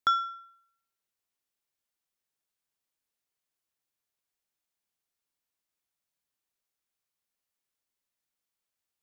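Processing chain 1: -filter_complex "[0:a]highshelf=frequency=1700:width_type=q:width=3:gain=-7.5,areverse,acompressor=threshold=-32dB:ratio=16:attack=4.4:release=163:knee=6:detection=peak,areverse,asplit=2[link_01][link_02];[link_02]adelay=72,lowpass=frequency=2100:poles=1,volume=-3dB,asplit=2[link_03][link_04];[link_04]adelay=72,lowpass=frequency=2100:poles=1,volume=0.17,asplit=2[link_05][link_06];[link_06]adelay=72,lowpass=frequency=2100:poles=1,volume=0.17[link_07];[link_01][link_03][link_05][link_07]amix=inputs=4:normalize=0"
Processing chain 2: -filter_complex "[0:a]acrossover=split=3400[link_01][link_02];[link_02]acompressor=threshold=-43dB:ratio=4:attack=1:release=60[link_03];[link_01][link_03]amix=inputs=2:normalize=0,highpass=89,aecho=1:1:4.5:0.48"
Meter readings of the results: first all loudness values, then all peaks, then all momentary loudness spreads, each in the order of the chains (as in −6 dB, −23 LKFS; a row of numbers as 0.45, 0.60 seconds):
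−33.0, −28.0 LKFS; −26.0, −13.0 dBFS; 17, 17 LU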